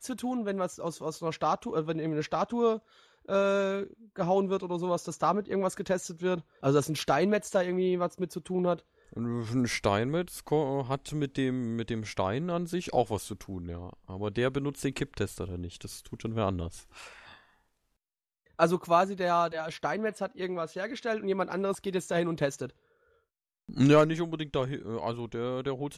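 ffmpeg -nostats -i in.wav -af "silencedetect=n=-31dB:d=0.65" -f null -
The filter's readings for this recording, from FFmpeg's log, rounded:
silence_start: 16.67
silence_end: 18.59 | silence_duration: 1.92
silence_start: 22.66
silence_end: 23.72 | silence_duration: 1.06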